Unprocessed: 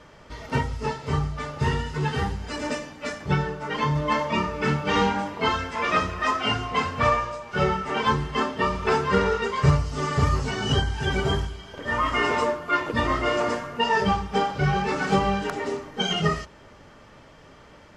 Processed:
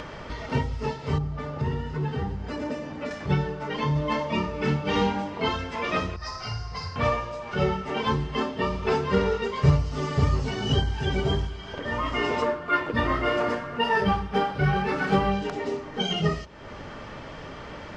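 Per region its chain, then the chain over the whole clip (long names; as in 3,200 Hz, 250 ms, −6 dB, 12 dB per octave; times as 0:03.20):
0:01.18–0:03.11: high-pass filter 62 Hz + tilt shelving filter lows +5 dB, about 1,100 Hz + downward compressor 1.5 to 1, threshold −35 dBFS
0:06.16–0:06.96: drawn EQ curve 130 Hz 0 dB, 240 Hz −22 dB, 870 Hz −13 dB, 2,200 Hz −15 dB, 3,200 Hz −20 dB, 4,900 Hz +7 dB, 7,100 Hz −7 dB + flutter between parallel walls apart 8.8 metres, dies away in 0.42 s
0:12.42–0:15.32: parametric band 1,500 Hz +7.5 dB 0.86 octaves + linearly interpolated sample-rate reduction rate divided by 3×
whole clip: low-pass filter 5,100 Hz 12 dB per octave; dynamic equaliser 1,400 Hz, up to −7 dB, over −38 dBFS, Q 1; upward compression, threshold −28 dBFS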